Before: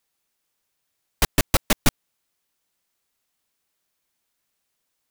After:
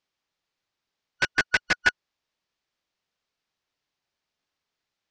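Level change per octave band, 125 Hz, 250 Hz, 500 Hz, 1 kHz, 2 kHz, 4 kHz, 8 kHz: −16.0, −13.0, −8.5, −4.0, +8.0, −3.5, −12.0 decibels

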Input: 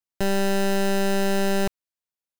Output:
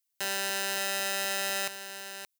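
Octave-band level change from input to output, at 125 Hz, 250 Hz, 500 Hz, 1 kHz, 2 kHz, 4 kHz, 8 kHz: below −20 dB, −23.5 dB, −14.0 dB, −7.0 dB, −1.5 dB, +1.0 dB, +2.0 dB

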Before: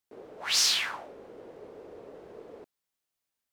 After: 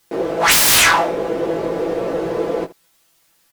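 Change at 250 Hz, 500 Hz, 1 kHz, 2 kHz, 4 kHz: +27.5, +25.5, +24.0, +18.5, +9.5 decibels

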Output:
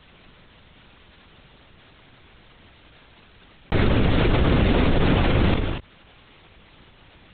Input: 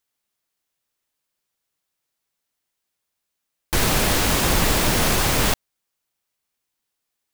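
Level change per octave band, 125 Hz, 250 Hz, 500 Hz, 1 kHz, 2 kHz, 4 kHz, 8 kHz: +5.0 dB, +4.5 dB, +1.5 dB, −3.5 dB, −4.0 dB, −7.5 dB, below −40 dB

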